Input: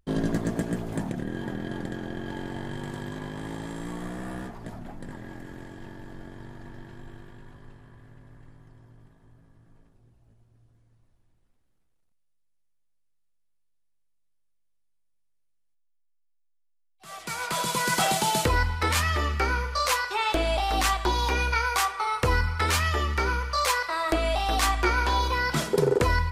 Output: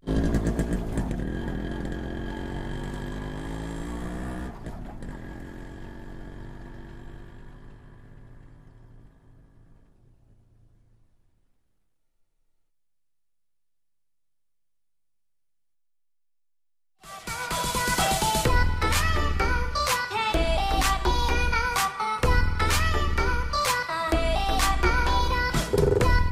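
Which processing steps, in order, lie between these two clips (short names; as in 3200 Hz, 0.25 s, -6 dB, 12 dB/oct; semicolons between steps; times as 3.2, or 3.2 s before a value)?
octaver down 2 oct, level +1 dB; pre-echo 48 ms -23.5 dB; spectral freeze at 12.01, 0.68 s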